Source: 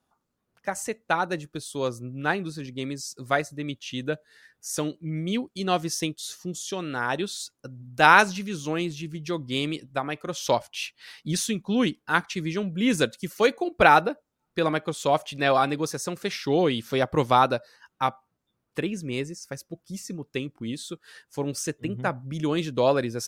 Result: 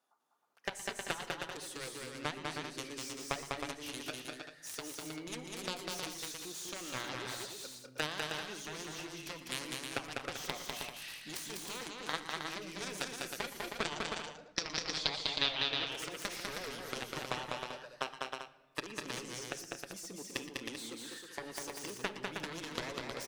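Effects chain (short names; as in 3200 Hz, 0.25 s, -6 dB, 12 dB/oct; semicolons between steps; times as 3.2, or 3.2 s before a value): HPF 450 Hz 12 dB/oct; compressor 10:1, threshold -33 dBFS, peak gain reduction 22.5 dB; added harmonics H 3 -18 dB, 7 -16 dB, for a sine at -17.5 dBFS; 13.83–15.91 synth low-pass 7800 Hz -> 2900 Hz, resonance Q 5; tapped delay 0.118/0.119/0.199/0.23/0.315/0.39 s -17/-18.5/-3/-13.5/-5.5/-10 dB; shoebox room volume 1100 m³, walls mixed, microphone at 0.33 m; gain +2.5 dB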